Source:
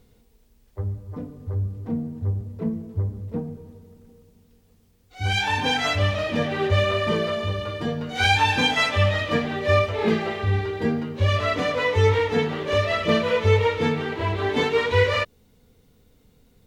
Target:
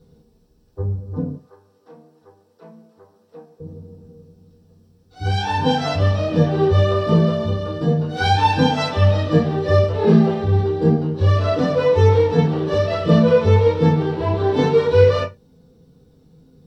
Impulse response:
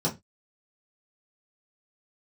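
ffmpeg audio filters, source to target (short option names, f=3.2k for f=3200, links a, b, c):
-filter_complex "[0:a]asettb=1/sr,asplit=3[a][b][c];[a]atrim=end=1.354[d];[b]atrim=start=1.35:end=3.6,asetpts=PTS-STARTPTS,afade=t=in:d=0.004:c=qsin,afade=t=out:st=2.246:d=0.004:c=qsin,highpass=1.1k[e];[c]atrim=start=3.596[f];[d][e]acrossfade=d=0.004:c1=hsin:c2=qsin[g];[g][f]acrossfade=d=0.004:c1=qsin:c2=hsin[h];[1:a]atrim=start_sample=2205,afade=t=out:st=0.18:d=0.01,atrim=end_sample=8379[i];[h][i]afir=irnorm=-1:irlink=0,volume=-8.5dB"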